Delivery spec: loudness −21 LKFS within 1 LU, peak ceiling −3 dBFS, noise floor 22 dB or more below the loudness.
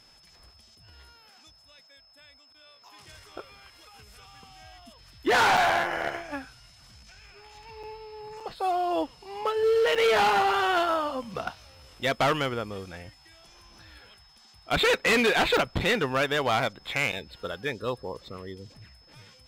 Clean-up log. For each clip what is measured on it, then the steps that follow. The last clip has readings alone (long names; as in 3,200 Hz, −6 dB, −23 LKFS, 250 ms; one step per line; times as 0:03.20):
number of dropouts 6; longest dropout 5.7 ms; interfering tone 5,200 Hz; level of the tone −56 dBFS; integrated loudness −25.5 LKFS; sample peak −17.0 dBFS; target loudness −21.0 LKFS
→ repair the gap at 0:05.57/0:07.83/0:08.40/0:09.95/0:15.57/0:17.12, 5.7 ms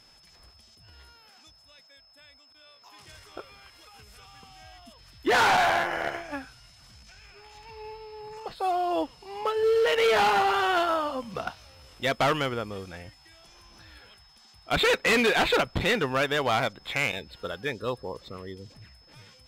number of dropouts 0; interfering tone 5,200 Hz; level of the tone −56 dBFS
→ notch filter 5,200 Hz, Q 30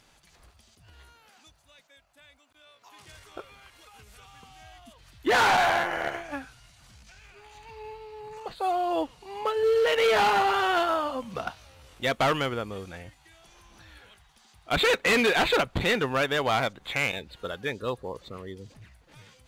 interfering tone none found; integrated loudness −25.5 LKFS; sample peak −17.0 dBFS; target loudness −21.0 LKFS
→ level +4.5 dB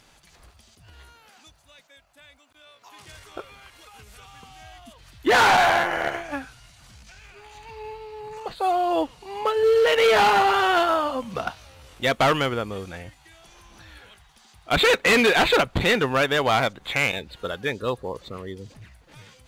integrated loudness −21.0 LKFS; sample peak −12.5 dBFS; background noise floor −57 dBFS